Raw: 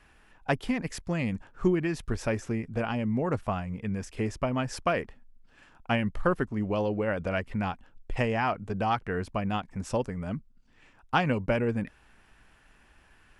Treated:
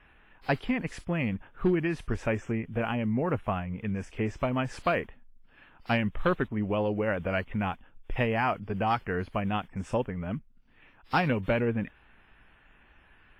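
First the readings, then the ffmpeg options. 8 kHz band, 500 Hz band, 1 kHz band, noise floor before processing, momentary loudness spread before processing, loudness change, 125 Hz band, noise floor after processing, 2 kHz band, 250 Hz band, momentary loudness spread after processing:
can't be measured, 0.0 dB, 0.0 dB, −60 dBFS, 7 LU, 0.0 dB, 0.0 dB, −60 dBFS, +1.0 dB, 0.0 dB, 7 LU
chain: -af "highshelf=frequency=3600:width_type=q:width=1.5:gain=-7.5,asoftclip=type=hard:threshold=-17.5dB" -ar 32000 -c:a wmav2 -b:a 32k

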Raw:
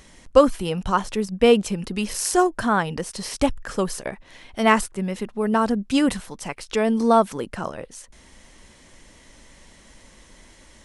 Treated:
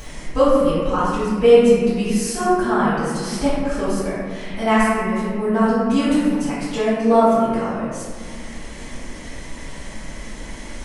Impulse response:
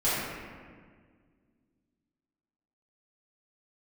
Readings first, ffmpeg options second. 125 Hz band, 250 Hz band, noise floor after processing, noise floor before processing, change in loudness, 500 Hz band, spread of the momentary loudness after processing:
+4.5 dB, +4.5 dB, −34 dBFS, −51 dBFS, +3.5 dB, +4.5 dB, 21 LU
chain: -filter_complex "[0:a]acompressor=mode=upward:threshold=-23dB:ratio=2.5[link_01];[1:a]atrim=start_sample=2205[link_02];[link_01][link_02]afir=irnorm=-1:irlink=0,volume=-11dB"

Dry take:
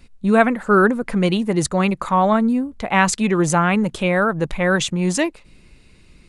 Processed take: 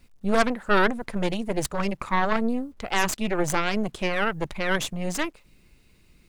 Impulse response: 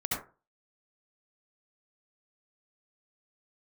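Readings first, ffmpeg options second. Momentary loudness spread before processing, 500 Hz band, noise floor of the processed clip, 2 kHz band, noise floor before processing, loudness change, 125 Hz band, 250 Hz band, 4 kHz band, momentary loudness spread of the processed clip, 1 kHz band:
5 LU, −7.5 dB, −59 dBFS, −5.5 dB, −50 dBFS, −7.5 dB, −10.5 dB, −9.5 dB, −3.5 dB, 7 LU, −7.0 dB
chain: -af "aeval=exprs='0.841*(cos(1*acos(clip(val(0)/0.841,-1,1)))-cos(1*PI/2))+0.0168*(cos(3*acos(clip(val(0)/0.841,-1,1)))-cos(3*PI/2))+0.237*(cos(6*acos(clip(val(0)/0.841,-1,1)))-cos(6*PI/2))+0.0266*(cos(8*acos(clip(val(0)/0.841,-1,1)))-cos(8*PI/2))':channel_layout=same,acrusher=bits=9:mix=0:aa=0.000001,volume=-8dB"

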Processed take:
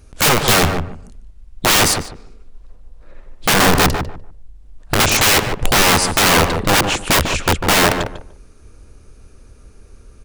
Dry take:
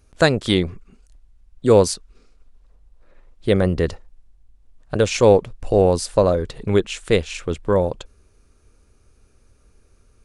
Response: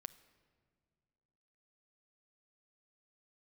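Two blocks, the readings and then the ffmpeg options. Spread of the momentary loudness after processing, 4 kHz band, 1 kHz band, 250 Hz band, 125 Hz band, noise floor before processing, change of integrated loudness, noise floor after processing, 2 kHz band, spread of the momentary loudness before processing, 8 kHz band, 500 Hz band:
11 LU, +13.0 dB, +10.5 dB, +1.5 dB, +2.0 dB, −57 dBFS, +5.0 dB, −45 dBFS, +13.0 dB, 12 LU, +15.0 dB, −3.5 dB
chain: -filter_complex "[0:a]lowshelf=frequency=420:gain=2.5,aeval=exprs='(mod(6.68*val(0)+1,2)-1)/6.68':channel_layout=same,asplit=2[link_01][link_02];[link_02]adelay=148,lowpass=frequency=1300:poles=1,volume=-5dB,asplit=2[link_03][link_04];[link_04]adelay=148,lowpass=frequency=1300:poles=1,volume=0.21,asplit=2[link_05][link_06];[link_06]adelay=148,lowpass=frequency=1300:poles=1,volume=0.21[link_07];[link_01][link_03][link_05][link_07]amix=inputs=4:normalize=0,volume=9dB"

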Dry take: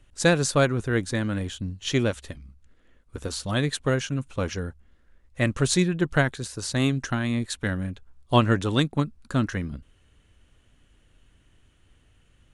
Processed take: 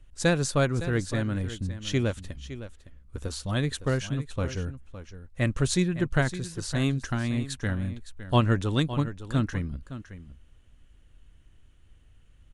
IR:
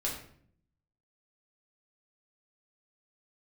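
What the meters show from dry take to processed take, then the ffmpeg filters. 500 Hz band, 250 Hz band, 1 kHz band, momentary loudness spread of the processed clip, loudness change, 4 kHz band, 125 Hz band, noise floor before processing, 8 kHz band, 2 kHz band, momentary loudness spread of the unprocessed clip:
−4.0 dB, −2.5 dB, −4.0 dB, 16 LU, −2.5 dB, −4.5 dB, −0.5 dB, −61 dBFS, −4.5 dB, −4.5 dB, 14 LU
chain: -af "lowshelf=frequency=88:gain=11.5,aecho=1:1:561:0.224,volume=-4.5dB"

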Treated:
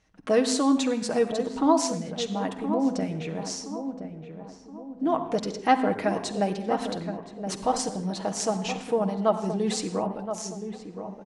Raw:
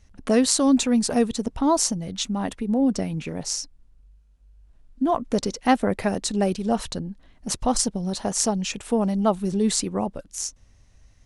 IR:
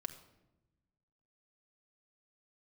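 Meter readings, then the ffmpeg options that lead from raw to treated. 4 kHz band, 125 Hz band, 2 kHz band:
−5.0 dB, −4.0 dB, −1.0 dB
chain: -filter_complex "[0:a]highpass=frequency=320:poles=1,aemphasis=mode=reproduction:type=50fm,asplit=2[link_01][link_02];[link_02]adelay=1021,lowpass=frequency=1200:poles=1,volume=-8.5dB,asplit=2[link_03][link_04];[link_04]adelay=1021,lowpass=frequency=1200:poles=1,volume=0.45,asplit=2[link_05][link_06];[link_06]adelay=1021,lowpass=frequency=1200:poles=1,volume=0.45,asplit=2[link_07][link_08];[link_08]adelay=1021,lowpass=frequency=1200:poles=1,volume=0.45,asplit=2[link_09][link_10];[link_10]adelay=1021,lowpass=frequency=1200:poles=1,volume=0.45[link_11];[link_01][link_03][link_05][link_07][link_09][link_11]amix=inputs=6:normalize=0[link_12];[1:a]atrim=start_sample=2205,afade=type=out:start_time=0.21:duration=0.01,atrim=end_sample=9702,asetrate=29988,aresample=44100[link_13];[link_12][link_13]afir=irnorm=-1:irlink=0"

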